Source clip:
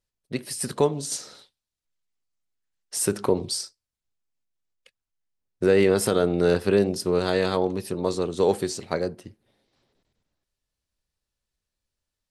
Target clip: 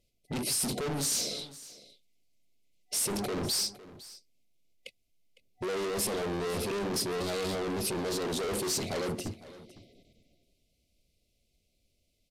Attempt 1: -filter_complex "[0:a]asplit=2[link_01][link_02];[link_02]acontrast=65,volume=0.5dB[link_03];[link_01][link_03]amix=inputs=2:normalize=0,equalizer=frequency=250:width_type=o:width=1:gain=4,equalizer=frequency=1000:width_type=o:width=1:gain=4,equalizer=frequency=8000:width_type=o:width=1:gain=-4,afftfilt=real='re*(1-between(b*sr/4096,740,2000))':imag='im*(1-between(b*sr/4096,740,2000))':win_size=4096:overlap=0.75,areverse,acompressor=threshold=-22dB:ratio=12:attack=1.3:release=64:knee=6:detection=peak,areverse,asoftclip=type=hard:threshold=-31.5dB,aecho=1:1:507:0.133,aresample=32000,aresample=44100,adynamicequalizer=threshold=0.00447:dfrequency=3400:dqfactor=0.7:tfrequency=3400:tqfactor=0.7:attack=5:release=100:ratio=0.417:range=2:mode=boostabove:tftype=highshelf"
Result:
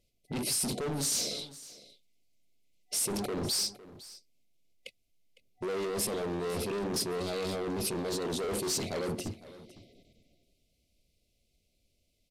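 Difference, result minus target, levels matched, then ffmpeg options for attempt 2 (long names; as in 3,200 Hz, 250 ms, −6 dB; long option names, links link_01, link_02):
downward compressor: peak gain reduction +6 dB
-filter_complex "[0:a]asplit=2[link_01][link_02];[link_02]acontrast=65,volume=0.5dB[link_03];[link_01][link_03]amix=inputs=2:normalize=0,equalizer=frequency=250:width_type=o:width=1:gain=4,equalizer=frequency=1000:width_type=o:width=1:gain=4,equalizer=frequency=8000:width_type=o:width=1:gain=-4,afftfilt=real='re*(1-between(b*sr/4096,740,2000))':imag='im*(1-between(b*sr/4096,740,2000))':win_size=4096:overlap=0.75,areverse,acompressor=threshold=-15.5dB:ratio=12:attack=1.3:release=64:knee=6:detection=peak,areverse,asoftclip=type=hard:threshold=-31.5dB,aecho=1:1:507:0.133,aresample=32000,aresample=44100,adynamicequalizer=threshold=0.00447:dfrequency=3400:dqfactor=0.7:tfrequency=3400:tqfactor=0.7:attack=5:release=100:ratio=0.417:range=2:mode=boostabove:tftype=highshelf"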